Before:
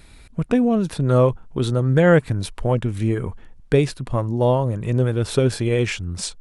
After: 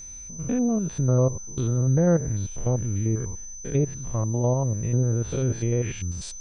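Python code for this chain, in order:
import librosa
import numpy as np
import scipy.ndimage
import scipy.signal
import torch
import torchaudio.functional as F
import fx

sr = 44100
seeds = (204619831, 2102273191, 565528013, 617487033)

y = fx.spec_steps(x, sr, hold_ms=100)
y = fx.low_shelf(y, sr, hz=160.0, db=8.5)
y = fx.env_lowpass_down(y, sr, base_hz=1000.0, full_db=-10.5)
y = y + 10.0 ** (-31.0 / 20.0) * np.sin(2.0 * np.pi * 6100.0 * np.arange(len(y)) / sr)
y = F.gain(torch.from_numpy(y), -7.0).numpy()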